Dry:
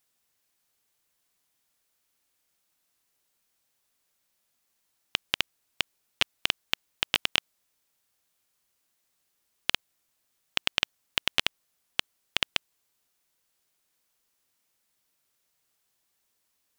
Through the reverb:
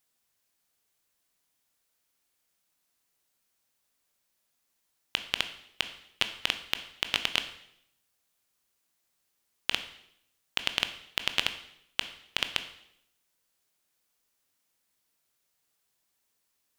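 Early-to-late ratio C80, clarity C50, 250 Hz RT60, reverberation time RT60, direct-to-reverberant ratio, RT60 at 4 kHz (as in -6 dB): 14.0 dB, 11.5 dB, 0.85 s, 0.75 s, 8.5 dB, 0.70 s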